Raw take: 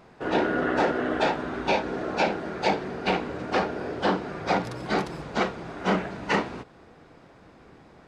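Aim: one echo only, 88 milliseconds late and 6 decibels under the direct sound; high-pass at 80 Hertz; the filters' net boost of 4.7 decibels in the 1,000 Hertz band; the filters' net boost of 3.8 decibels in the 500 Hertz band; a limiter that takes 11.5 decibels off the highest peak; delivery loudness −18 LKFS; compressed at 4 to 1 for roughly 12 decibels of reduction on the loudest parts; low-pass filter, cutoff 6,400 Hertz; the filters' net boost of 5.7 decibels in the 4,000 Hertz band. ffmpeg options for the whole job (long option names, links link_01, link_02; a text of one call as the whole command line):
ffmpeg -i in.wav -af "highpass=80,lowpass=6400,equalizer=frequency=500:width_type=o:gain=3.5,equalizer=frequency=1000:width_type=o:gain=4.5,equalizer=frequency=4000:width_type=o:gain=7.5,acompressor=threshold=-30dB:ratio=4,alimiter=level_in=4dB:limit=-24dB:level=0:latency=1,volume=-4dB,aecho=1:1:88:0.501,volume=18.5dB" out.wav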